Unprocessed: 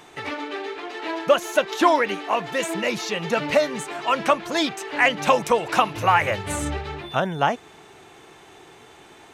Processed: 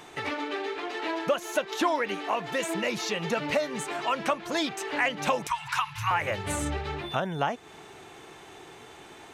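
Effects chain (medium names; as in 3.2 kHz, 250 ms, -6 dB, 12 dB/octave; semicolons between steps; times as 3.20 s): 5.47–6.11 s: Chebyshev band-stop 140–910 Hz, order 4; compression 2:1, threshold -29 dBFS, peak gain reduction 10 dB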